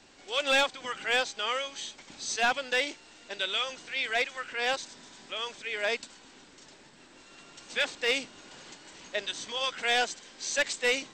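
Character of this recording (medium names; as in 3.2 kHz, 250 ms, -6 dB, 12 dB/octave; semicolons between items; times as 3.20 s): noise floor -55 dBFS; spectral tilt +0.5 dB/octave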